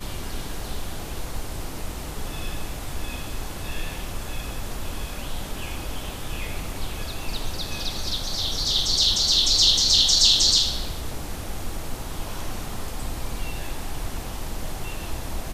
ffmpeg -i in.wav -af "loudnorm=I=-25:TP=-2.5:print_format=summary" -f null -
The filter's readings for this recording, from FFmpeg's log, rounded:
Input Integrated:    -25.0 LUFS
Input True Peak:      -3.7 dBTP
Input LRA:            15.7 LU
Input Threshold:     -35.0 LUFS